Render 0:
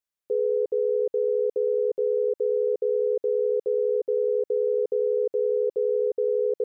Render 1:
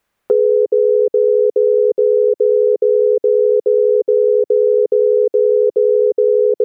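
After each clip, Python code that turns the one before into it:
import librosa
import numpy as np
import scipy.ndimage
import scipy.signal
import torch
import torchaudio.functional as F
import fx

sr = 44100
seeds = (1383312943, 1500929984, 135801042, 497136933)

y = fx.dynamic_eq(x, sr, hz=370.0, q=0.78, threshold_db=-38.0, ratio=4.0, max_db=7)
y = fx.band_squash(y, sr, depth_pct=70)
y = y * librosa.db_to_amplitude(5.0)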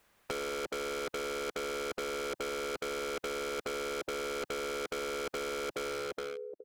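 y = fx.fade_out_tail(x, sr, length_s=0.84)
y = np.clip(10.0 ** (16.5 / 20.0) * y, -1.0, 1.0) / 10.0 ** (16.5 / 20.0)
y = fx.spectral_comp(y, sr, ratio=2.0)
y = y * librosa.db_to_amplitude(-7.0)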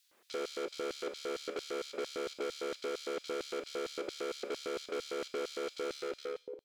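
y = fx.tube_stage(x, sr, drive_db=31.0, bias=0.2)
y = fx.rev_schroeder(y, sr, rt60_s=0.52, comb_ms=30, drr_db=7.5)
y = fx.filter_lfo_highpass(y, sr, shape='square', hz=4.4, low_hz=320.0, high_hz=4100.0, q=2.0)
y = y * librosa.db_to_amplitude(-1.0)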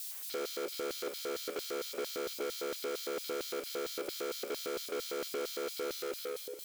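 y = x + 0.5 * 10.0 ** (-38.0 / 20.0) * np.diff(np.sign(x), prepend=np.sign(x[:1]))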